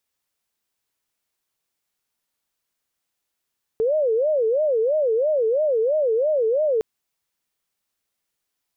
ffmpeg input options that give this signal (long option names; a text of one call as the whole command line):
ffmpeg -f lavfi -i "aevalsrc='0.141*sin(2*PI*(530.5*t-92.5/(2*PI*3)*sin(2*PI*3*t)))':duration=3.01:sample_rate=44100" out.wav